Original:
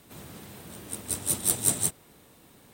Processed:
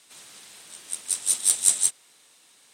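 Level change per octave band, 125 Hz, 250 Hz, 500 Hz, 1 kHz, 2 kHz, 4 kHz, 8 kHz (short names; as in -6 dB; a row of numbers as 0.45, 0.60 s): under -20 dB, under -15 dB, under -10 dB, -5.5 dB, +0.5 dB, +5.5 dB, +5.5 dB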